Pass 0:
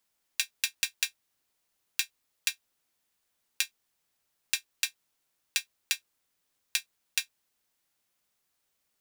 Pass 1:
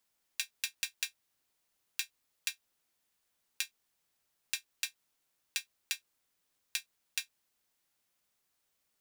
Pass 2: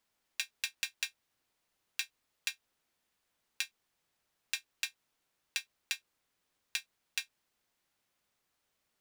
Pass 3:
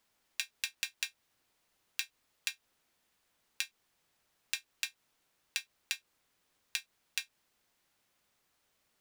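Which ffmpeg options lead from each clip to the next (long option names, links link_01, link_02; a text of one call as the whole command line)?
ffmpeg -i in.wav -af "alimiter=limit=-9.5dB:level=0:latency=1:release=155,volume=-1.5dB" out.wav
ffmpeg -i in.wav -af "highshelf=frequency=5500:gain=-8.5,volume=3dB" out.wav
ffmpeg -i in.wav -af "acompressor=threshold=-38dB:ratio=2.5,volume=4.5dB" out.wav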